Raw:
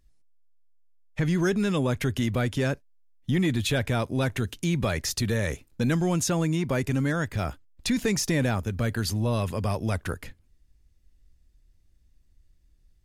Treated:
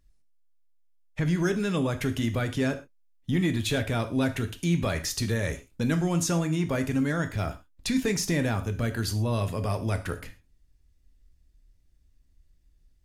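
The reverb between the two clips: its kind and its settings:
reverb whose tail is shaped and stops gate 150 ms falling, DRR 7.5 dB
level −2 dB

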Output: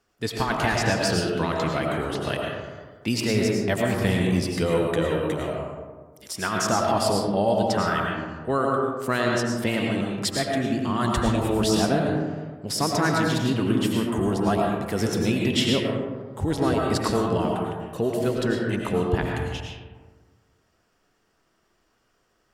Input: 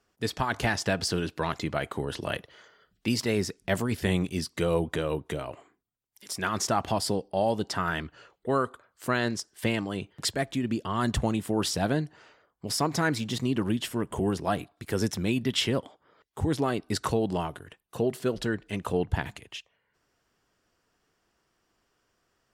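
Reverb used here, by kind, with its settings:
comb and all-pass reverb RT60 1.5 s, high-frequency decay 0.35×, pre-delay 65 ms, DRR −1 dB
level +1.5 dB

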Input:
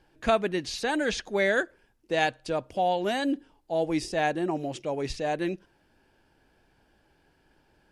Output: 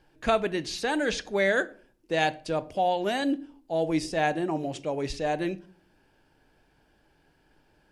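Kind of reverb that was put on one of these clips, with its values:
rectangular room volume 490 cubic metres, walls furnished, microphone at 0.41 metres

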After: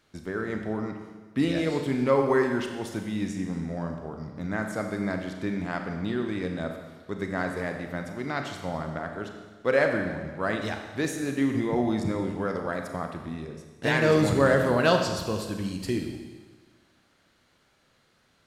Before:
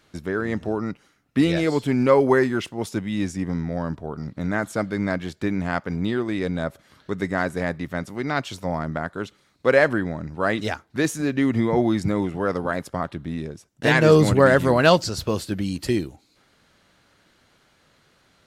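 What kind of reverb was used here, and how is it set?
four-comb reverb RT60 1.4 s, combs from 29 ms, DRR 4 dB
level −6.5 dB

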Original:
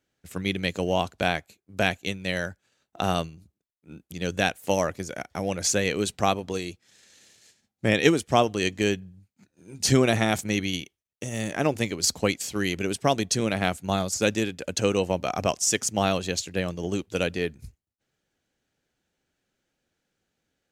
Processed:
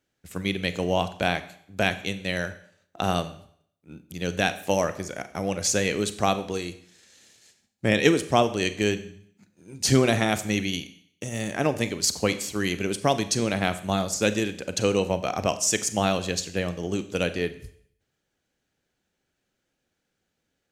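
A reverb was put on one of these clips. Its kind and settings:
four-comb reverb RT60 0.63 s, combs from 30 ms, DRR 11.5 dB

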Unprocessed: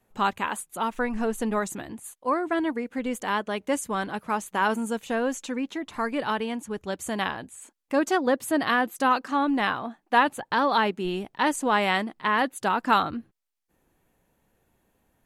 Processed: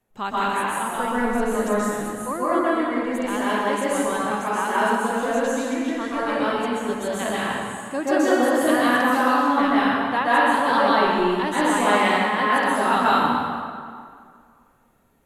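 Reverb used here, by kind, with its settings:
dense smooth reverb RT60 2.1 s, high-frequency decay 0.7×, pre-delay 115 ms, DRR −9 dB
level −4.5 dB

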